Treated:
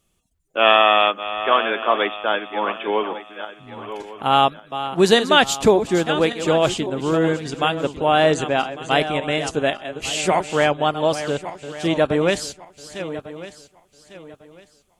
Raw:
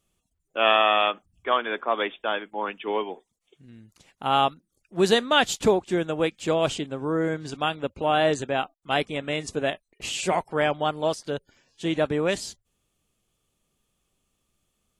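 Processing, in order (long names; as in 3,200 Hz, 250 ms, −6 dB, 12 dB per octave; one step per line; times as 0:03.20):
feedback delay that plays each chunk backwards 575 ms, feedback 51%, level −11 dB
level +5.5 dB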